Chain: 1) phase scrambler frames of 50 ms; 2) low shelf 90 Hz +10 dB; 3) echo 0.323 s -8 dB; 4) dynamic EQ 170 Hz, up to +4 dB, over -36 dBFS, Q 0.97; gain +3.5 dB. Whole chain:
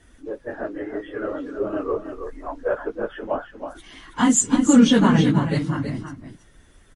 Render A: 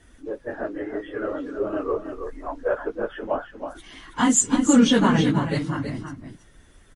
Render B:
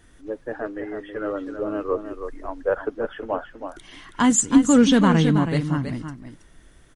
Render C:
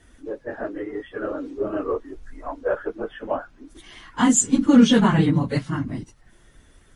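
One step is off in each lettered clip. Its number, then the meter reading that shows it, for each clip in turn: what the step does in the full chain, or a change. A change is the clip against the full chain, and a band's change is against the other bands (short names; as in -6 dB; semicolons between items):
4, loudness change -2.0 LU; 1, momentary loudness spread change -1 LU; 3, momentary loudness spread change -3 LU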